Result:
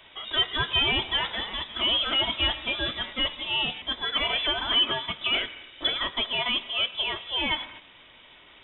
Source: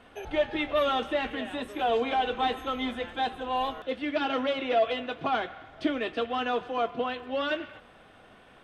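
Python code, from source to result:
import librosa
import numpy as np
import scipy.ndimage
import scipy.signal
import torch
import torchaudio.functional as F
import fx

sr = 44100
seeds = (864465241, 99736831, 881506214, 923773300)

y = fx.high_shelf(x, sr, hz=2500.0, db=11.0)
y = fx.freq_invert(y, sr, carrier_hz=3700)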